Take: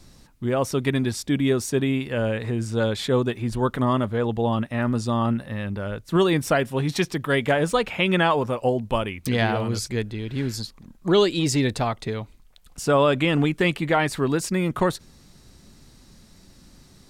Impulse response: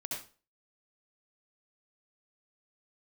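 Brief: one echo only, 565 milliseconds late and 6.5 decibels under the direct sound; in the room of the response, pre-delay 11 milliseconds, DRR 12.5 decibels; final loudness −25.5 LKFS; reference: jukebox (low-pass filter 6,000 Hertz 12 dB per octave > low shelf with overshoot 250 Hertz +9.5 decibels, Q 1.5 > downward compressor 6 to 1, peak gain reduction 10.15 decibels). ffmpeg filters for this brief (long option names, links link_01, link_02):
-filter_complex "[0:a]aecho=1:1:565:0.473,asplit=2[link_01][link_02];[1:a]atrim=start_sample=2205,adelay=11[link_03];[link_02][link_03]afir=irnorm=-1:irlink=0,volume=-13.5dB[link_04];[link_01][link_04]amix=inputs=2:normalize=0,lowpass=6000,lowshelf=frequency=250:width_type=q:width=1.5:gain=9.5,acompressor=threshold=-18dB:ratio=6,volume=-2.5dB"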